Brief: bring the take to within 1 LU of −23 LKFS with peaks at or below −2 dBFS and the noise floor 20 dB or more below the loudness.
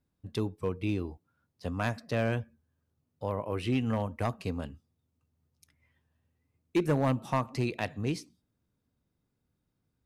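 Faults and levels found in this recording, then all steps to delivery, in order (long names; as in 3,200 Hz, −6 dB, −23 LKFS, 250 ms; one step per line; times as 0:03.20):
share of clipped samples 0.4%; peaks flattened at −20.0 dBFS; integrated loudness −32.5 LKFS; sample peak −20.0 dBFS; target loudness −23.0 LKFS
→ clipped peaks rebuilt −20 dBFS
level +9.5 dB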